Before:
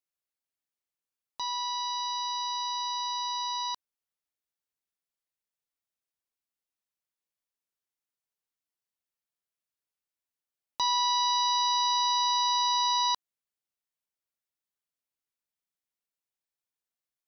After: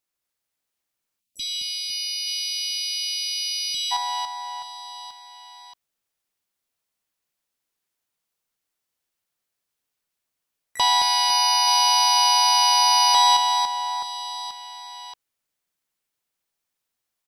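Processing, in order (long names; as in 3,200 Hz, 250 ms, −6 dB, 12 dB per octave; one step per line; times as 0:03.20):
reverse bouncing-ball delay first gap 220 ms, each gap 1.3×, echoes 5
time-frequency box erased 0:01.20–0:03.92, 330–2,300 Hz
pitch-shifted copies added −5 semitones −11 dB, −3 semitones −10 dB, +12 semitones −16 dB
level +7 dB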